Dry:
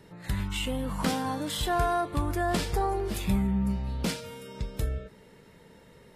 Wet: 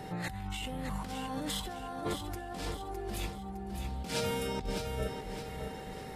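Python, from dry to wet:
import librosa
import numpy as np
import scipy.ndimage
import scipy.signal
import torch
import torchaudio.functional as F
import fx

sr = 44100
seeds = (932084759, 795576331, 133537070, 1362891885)

y = fx.over_compress(x, sr, threshold_db=-39.0, ratio=-1.0)
y = y + 10.0 ** (-46.0 / 20.0) * np.sin(2.0 * np.pi * 770.0 * np.arange(len(y)) / sr)
y = fx.echo_feedback(y, sr, ms=610, feedback_pct=42, wet_db=-7.0)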